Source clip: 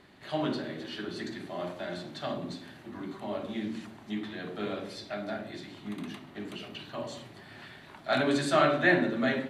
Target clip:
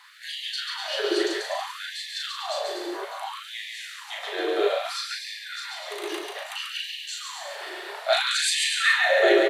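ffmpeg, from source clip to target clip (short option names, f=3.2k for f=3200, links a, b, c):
-filter_complex "[0:a]equalizer=f=360:w=0.37:g=11.5,aecho=1:1:140|245|323.8|382.8|427.1:0.631|0.398|0.251|0.158|0.1,acrossover=split=230|650|2000[a][b][c][d];[c]acompressor=threshold=-35dB:ratio=6[e];[a][b][e][d]amix=inputs=4:normalize=0,highshelf=f=3.1k:g=12,asplit=2[f][g];[g]adelay=37,volume=-4dB[h];[f][h]amix=inputs=2:normalize=0,afftfilt=real='re*gte(b*sr/1024,320*pow(1700/320,0.5+0.5*sin(2*PI*0.61*pts/sr)))':imag='im*gte(b*sr/1024,320*pow(1700/320,0.5+0.5*sin(2*PI*0.61*pts/sr)))':win_size=1024:overlap=0.75,volume=2.5dB"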